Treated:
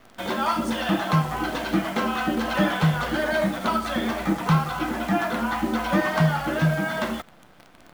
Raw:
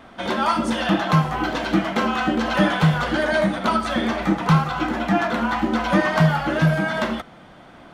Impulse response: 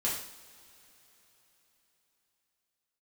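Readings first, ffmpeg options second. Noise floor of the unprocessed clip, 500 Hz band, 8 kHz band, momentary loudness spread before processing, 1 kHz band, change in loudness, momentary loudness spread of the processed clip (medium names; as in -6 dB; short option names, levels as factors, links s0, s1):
-45 dBFS, -3.5 dB, 0.0 dB, 5 LU, -3.5 dB, -3.5 dB, 5 LU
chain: -af "acrusher=bits=7:dc=4:mix=0:aa=0.000001,volume=0.668"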